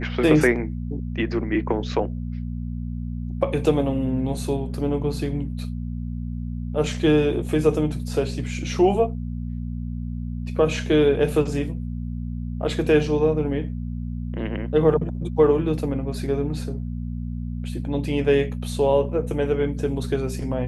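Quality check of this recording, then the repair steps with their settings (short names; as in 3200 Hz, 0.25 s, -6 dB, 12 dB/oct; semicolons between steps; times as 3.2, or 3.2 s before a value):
hum 60 Hz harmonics 4 -29 dBFS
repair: de-hum 60 Hz, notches 4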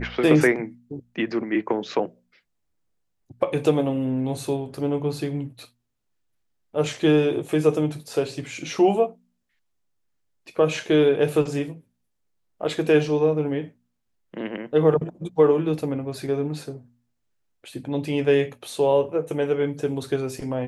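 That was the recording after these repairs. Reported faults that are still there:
none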